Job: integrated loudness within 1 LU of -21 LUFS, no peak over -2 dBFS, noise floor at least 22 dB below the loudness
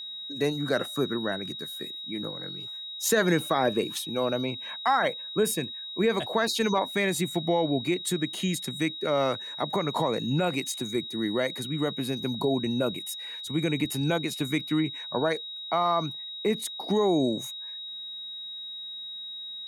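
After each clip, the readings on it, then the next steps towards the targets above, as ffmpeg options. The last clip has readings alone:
steady tone 3800 Hz; tone level -36 dBFS; loudness -28.5 LUFS; peak -12.0 dBFS; loudness target -21.0 LUFS
-> -af "bandreject=f=3.8k:w=30"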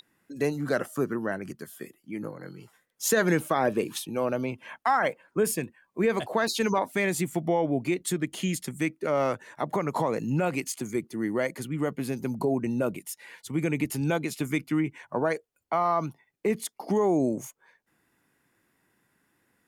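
steady tone none; loudness -28.5 LUFS; peak -12.5 dBFS; loudness target -21.0 LUFS
-> -af "volume=7.5dB"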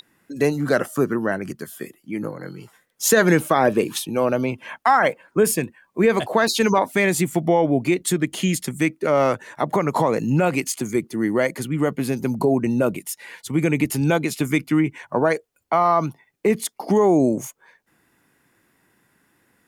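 loudness -21.0 LUFS; peak -5.0 dBFS; noise floor -66 dBFS

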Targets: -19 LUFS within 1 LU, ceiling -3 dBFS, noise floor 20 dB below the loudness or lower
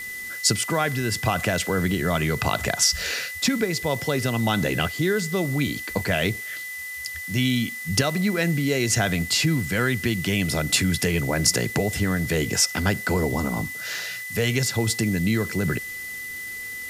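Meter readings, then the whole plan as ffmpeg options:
steady tone 2000 Hz; tone level -32 dBFS; noise floor -34 dBFS; noise floor target -44 dBFS; loudness -23.5 LUFS; peak -5.5 dBFS; loudness target -19.0 LUFS
-> -af "bandreject=f=2k:w=30"
-af "afftdn=nr=10:nf=-34"
-af "volume=4.5dB,alimiter=limit=-3dB:level=0:latency=1"

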